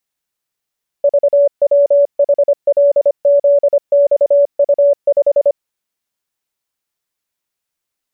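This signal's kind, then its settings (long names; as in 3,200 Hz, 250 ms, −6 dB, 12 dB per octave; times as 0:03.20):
Morse code "VWHLZXU5" 25 words per minute 570 Hz −6.5 dBFS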